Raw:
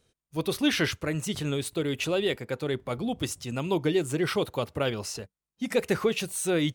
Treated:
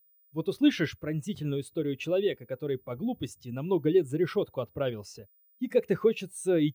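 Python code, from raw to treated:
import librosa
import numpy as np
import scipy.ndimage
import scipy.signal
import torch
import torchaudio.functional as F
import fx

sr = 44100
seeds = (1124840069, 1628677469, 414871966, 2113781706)

y = x + 10.0 ** (-50.0 / 20.0) * np.sin(2.0 * np.pi * 15000.0 * np.arange(len(x)) / sr)
y = fx.spectral_expand(y, sr, expansion=1.5)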